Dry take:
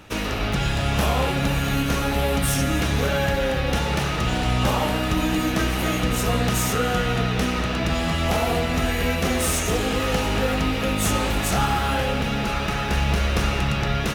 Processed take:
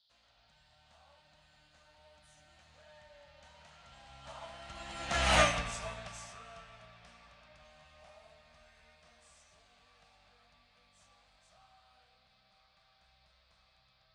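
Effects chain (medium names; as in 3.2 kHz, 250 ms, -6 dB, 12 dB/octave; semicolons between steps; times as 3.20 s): Doppler pass-by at 5.35 s, 28 m/s, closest 3 m; steep low-pass 9.3 kHz 48 dB/octave; peaking EQ 350 Hz -6.5 dB 1.8 oct; band noise 3.2–4.9 kHz -67 dBFS; resonant low shelf 500 Hz -6.5 dB, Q 3; upward expansion 1.5:1, over -47 dBFS; trim +3.5 dB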